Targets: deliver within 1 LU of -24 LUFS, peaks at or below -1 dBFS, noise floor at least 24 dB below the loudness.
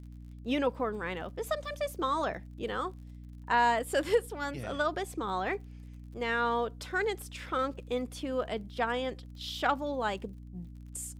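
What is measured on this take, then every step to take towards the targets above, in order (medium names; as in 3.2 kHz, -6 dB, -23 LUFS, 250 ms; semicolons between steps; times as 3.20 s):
tick rate 39 per s; hum 60 Hz; highest harmonic 300 Hz; hum level -44 dBFS; loudness -32.5 LUFS; peak level -15.5 dBFS; loudness target -24.0 LUFS
-> de-click; de-hum 60 Hz, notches 5; trim +8.5 dB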